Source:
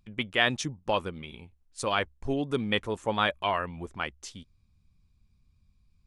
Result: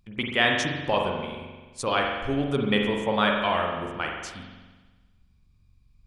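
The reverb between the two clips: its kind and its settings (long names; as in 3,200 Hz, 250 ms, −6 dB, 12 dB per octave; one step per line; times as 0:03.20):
spring reverb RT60 1.3 s, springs 43 ms, chirp 45 ms, DRR 0.5 dB
level +1.5 dB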